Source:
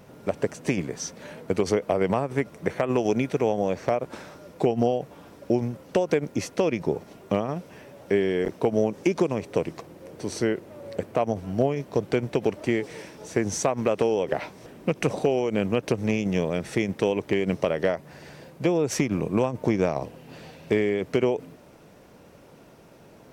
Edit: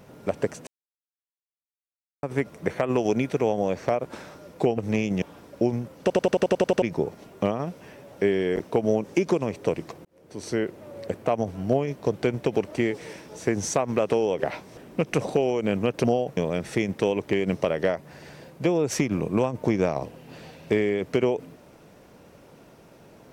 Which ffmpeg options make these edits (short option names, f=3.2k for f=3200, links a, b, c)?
-filter_complex "[0:a]asplit=17[a][b][c][d][e][f][g][h][i][j][k][l][m][n][o][p][q];[a]atrim=end=0.67,asetpts=PTS-STARTPTS,afade=t=out:st=0.666:d=0.004:c=hsin[r];[b]atrim=start=0.67:end=2.23,asetpts=PTS-STARTPTS,volume=0[s];[c]atrim=start=2.23:end=4.782,asetpts=PTS-STARTPTS,afade=t=in:d=0.004:c=hsin[t];[d]atrim=start=15.928:end=16.372[u];[e]atrim=start=5.108:end=5.992[v];[f]atrim=start=5.898:end=5.992[w];[g]atrim=start=5.898:end=5.992[x];[h]atrim=start=5.898:end=5.992[y];[i]atrim=start=5.898:end=5.992[z];[j]atrim=start=5.898:end=5.992[aa];[k]atrim=start=5.898:end=5.992[ab];[l]atrim=start=5.898:end=5.992[ac];[m]atrim=start=5.898:end=5.992[ad];[n]atrim=start=6.708:end=9.94,asetpts=PTS-STARTPTS,afade=t=out:st=3.228:d=0.004:c=hsin[ae];[o]atrim=start=9.94:end=15.932,asetpts=PTS-STARTPTS,afade=t=in:d=0.63[af];[p]atrim=start=4.778:end=5.112[ag];[q]atrim=start=16.368[ah];[r][s][t]concat=n=3:v=0:a=1[ai];[ai][u]acrossfade=d=0.004:c1=hsin:c2=hsin[aj];[aj][v]acrossfade=d=0.004:c1=hsin:c2=hsin[ak];[ak][w]acrossfade=d=0.004:c1=hsin:c2=hsin[al];[al][x]acrossfade=d=0.004:c1=hsin:c2=hsin[am];[am][y]acrossfade=d=0.004:c1=hsin:c2=hsin[an];[an][z]acrossfade=d=0.004:c1=hsin:c2=hsin[ao];[ao][aa]acrossfade=d=0.004:c1=hsin:c2=hsin[ap];[ap][ab]acrossfade=d=0.004:c1=hsin:c2=hsin[aq];[aq][ac]acrossfade=d=0.004:c1=hsin:c2=hsin[ar];[ar][ad]acrossfade=d=0.004:c1=hsin:c2=hsin[as];[ae][af]concat=n=2:v=0:a=1[at];[as][at]acrossfade=d=0.004:c1=hsin:c2=hsin[au];[au][ag]acrossfade=d=0.004:c1=hsin:c2=hsin[av];[av][ah]acrossfade=d=0.004:c1=hsin:c2=hsin"